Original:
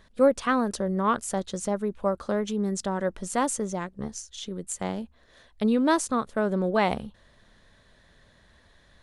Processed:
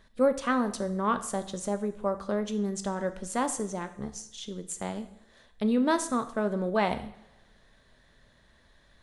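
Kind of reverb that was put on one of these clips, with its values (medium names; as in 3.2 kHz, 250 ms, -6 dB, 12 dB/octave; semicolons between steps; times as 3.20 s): two-slope reverb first 0.64 s, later 1.7 s, DRR 8.5 dB; trim -3.5 dB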